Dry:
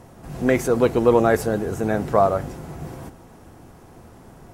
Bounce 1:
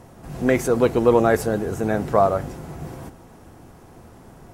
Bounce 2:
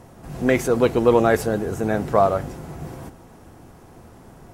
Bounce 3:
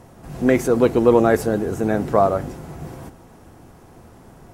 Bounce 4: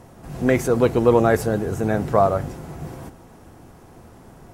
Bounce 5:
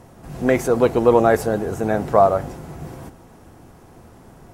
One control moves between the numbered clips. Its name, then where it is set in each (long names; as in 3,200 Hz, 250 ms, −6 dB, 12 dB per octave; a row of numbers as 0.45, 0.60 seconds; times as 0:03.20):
dynamic equaliser, frequency: 8,600, 3,100, 290, 110, 740 Hertz